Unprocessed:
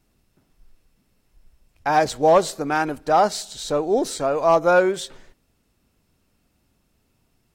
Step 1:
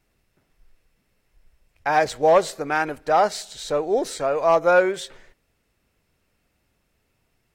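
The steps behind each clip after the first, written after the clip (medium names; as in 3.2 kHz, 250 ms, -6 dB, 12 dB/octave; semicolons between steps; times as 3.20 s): graphic EQ 250/500/2000 Hz -4/+4/+7 dB; trim -3.5 dB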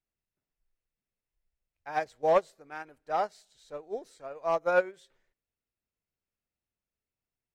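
upward expansion 2.5:1, over -25 dBFS; trim -6 dB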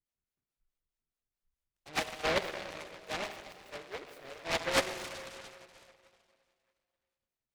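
harmonic tremolo 4.7 Hz, depth 100%, crossover 510 Hz; reverberation RT60 2.5 s, pre-delay 49 ms, DRR 6.5 dB; delay time shaken by noise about 1.4 kHz, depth 0.24 ms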